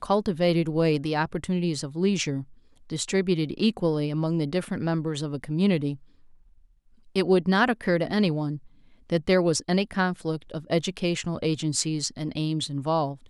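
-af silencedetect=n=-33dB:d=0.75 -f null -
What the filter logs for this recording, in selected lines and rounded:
silence_start: 5.94
silence_end: 7.16 | silence_duration: 1.21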